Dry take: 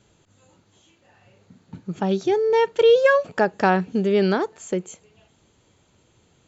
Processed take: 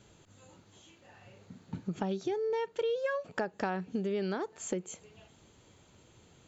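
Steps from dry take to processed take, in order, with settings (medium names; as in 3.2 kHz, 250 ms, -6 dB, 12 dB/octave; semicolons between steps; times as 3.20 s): compression 5:1, threshold -32 dBFS, peak gain reduction 18 dB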